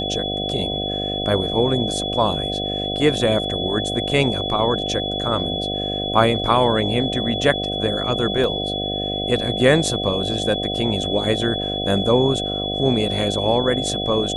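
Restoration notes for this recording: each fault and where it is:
mains buzz 50 Hz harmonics 15 −27 dBFS
whistle 3,400 Hz −25 dBFS
0:08.44: drop-out 3 ms

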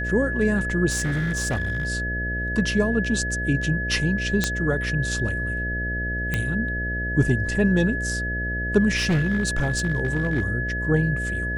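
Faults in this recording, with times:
mains buzz 60 Hz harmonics 11 −29 dBFS
whistle 1,700 Hz −27 dBFS
0:00.90–0:01.87: clipping −20.5 dBFS
0:04.44: click −6 dBFS
0:06.34: click −11 dBFS
0:08.96–0:10.48: clipping −17 dBFS

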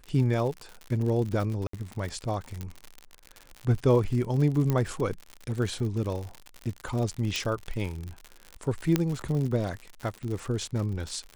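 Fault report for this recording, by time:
surface crackle 88 per second −32 dBFS
0:01.67–0:01.73: drop-out 64 ms
0:02.61: click −21 dBFS
0:04.70: click −14 dBFS
0:07.36: click −14 dBFS
0:08.96: click −9 dBFS

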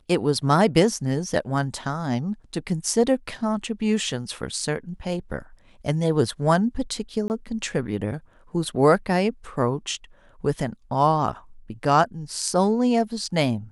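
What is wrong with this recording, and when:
0:07.28–0:07.30: drop-out 19 ms

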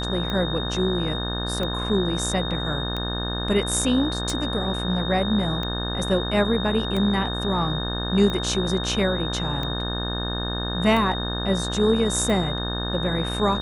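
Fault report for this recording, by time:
mains buzz 60 Hz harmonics 30 −29 dBFS
scratch tick 45 rpm −16 dBFS
whistle 3,700 Hz −30 dBFS

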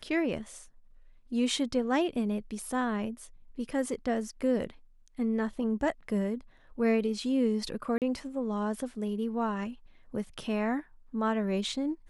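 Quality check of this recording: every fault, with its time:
0:07.98–0:08.02: drop-out 38 ms

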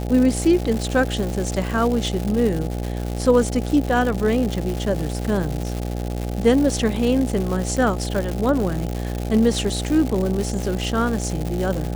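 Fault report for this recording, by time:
mains buzz 60 Hz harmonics 14 −26 dBFS
surface crackle 270 per second −24 dBFS

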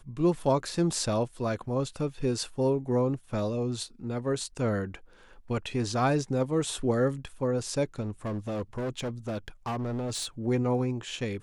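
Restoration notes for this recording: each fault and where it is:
0:08.00–0:10.26: clipping −28.5 dBFS

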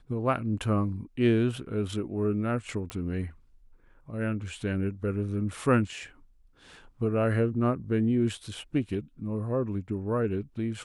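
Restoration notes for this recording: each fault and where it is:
0:02.90: click −18 dBFS

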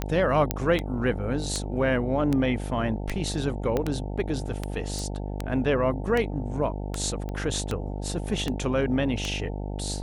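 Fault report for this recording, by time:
mains buzz 50 Hz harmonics 18 −32 dBFS
scratch tick 78 rpm −13 dBFS
0:00.51: click −7 dBFS
0:03.77: click −13 dBFS
0:04.99: click
0:07.29: click −22 dBFS

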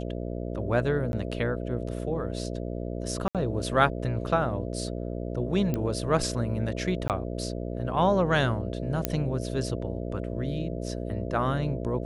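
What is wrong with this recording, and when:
mains buzz 60 Hz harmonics 11 −33 dBFS
0:01.12–0:01.13: drop-out 11 ms
0:03.28–0:03.35: drop-out 67 ms
0:05.74: click −16 dBFS
0:07.08–0:07.10: drop-out 18 ms
0:09.05: click −8 dBFS

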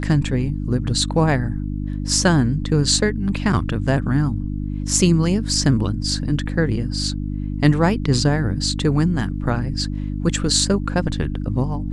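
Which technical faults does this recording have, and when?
mains hum 50 Hz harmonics 6 −25 dBFS

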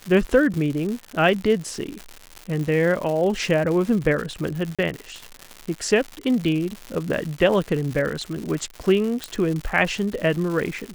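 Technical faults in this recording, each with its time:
surface crackle 180 per second −27 dBFS
0:04.75–0:04.79: drop-out 36 ms
0:09.24: click

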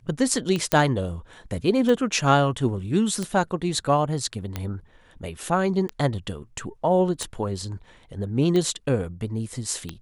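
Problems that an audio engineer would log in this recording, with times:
scratch tick 45 rpm −14 dBFS
0:00.72: click −4 dBFS

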